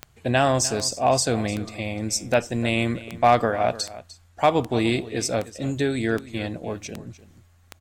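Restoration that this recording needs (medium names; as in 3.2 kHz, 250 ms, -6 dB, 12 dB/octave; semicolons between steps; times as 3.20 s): clip repair -8.5 dBFS; de-click; inverse comb 300 ms -16.5 dB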